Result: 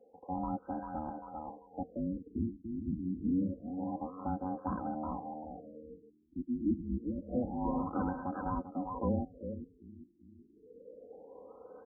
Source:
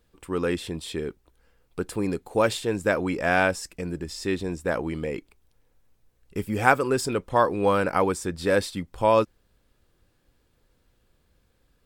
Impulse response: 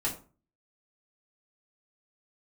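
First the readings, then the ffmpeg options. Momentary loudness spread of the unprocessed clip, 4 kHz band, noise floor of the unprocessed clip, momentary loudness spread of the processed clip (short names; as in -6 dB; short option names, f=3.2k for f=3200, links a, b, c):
12 LU, under -40 dB, -68 dBFS, 19 LU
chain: -filter_complex "[0:a]aeval=exprs='val(0)*sin(2*PI*460*n/s)':c=same,highpass=69,aecho=1:1:3.9:0.79,aecho=1:1:394|788|1182:0.299|0.0806|0.0218,acrossover=split=370[a][b];[b]acompressor=threshold=-38dB:ratio=6[c];[a][c]amix=inputs=2:normalize=0,lowshelf=f=140:g=-11,areverse,acompressor=mode=upward:threshold=-37dB:ratio=2.5,areverse,afftfilt=real='re*lt(b*sr/1024,370*pow(1700/370,0.5+0.5*sin(2*PI*0.27*pts/sr)))':imag='im*lt(b*sr/1024,370*pow(1700/370,0.5+0.5*sin(2*PI*0.27*pts/sr)))':win_size=1024:overlap=0.75"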